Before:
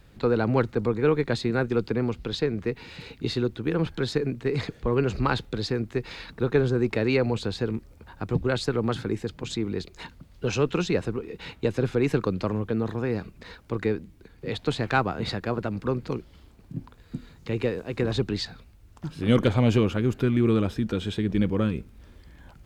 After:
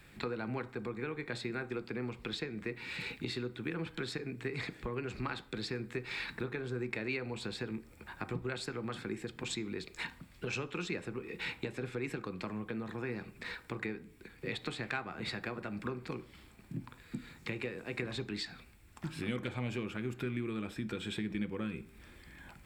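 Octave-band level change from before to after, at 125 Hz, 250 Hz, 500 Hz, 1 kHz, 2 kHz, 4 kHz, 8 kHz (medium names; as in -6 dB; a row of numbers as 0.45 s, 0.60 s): -15.0 dB, -13.0 dB, -14.5 dB, -12.5 dB, -6.0 dB, -7.5 dB, -6.5 dB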